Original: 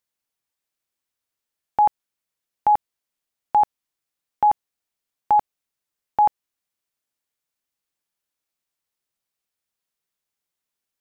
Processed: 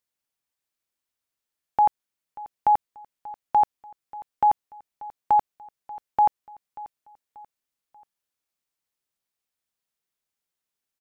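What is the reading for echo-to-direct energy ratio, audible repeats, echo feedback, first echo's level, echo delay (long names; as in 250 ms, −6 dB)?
−18.5 dB, 3, 42%, −19.5 dB, 586 ms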